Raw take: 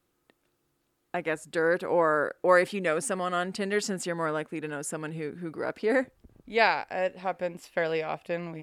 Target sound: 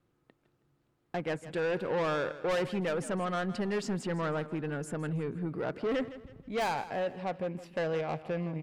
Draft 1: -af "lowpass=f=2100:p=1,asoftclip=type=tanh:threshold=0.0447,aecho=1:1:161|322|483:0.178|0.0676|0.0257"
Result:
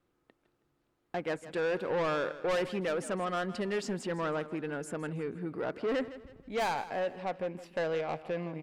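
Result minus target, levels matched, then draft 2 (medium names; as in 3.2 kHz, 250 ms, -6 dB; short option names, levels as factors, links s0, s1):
125 Hz band -4.5 dB
-af "lowpass=f=2100:p=1,equalizer=f=130:t=o:w=1.2:g=8.5,asoftclip=type=tanh:threshold=0.0447,aecho=1:1:161|322|483:0.178|0.0676|0.0257"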